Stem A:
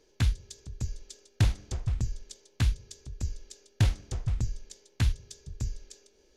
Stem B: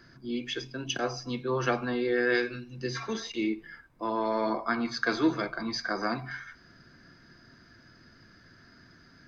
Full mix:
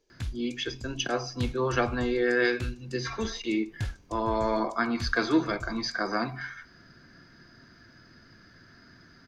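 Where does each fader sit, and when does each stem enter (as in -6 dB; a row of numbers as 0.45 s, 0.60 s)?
-9.0 dB, +1.5 dB; 0.00 s, 0.10 s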